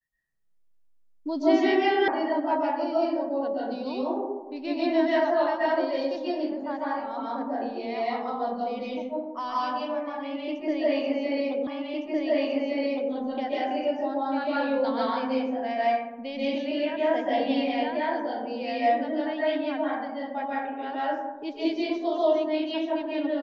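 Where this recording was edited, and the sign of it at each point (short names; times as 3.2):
2.08 sound cut off
11.67 repeat of the last 1.46 s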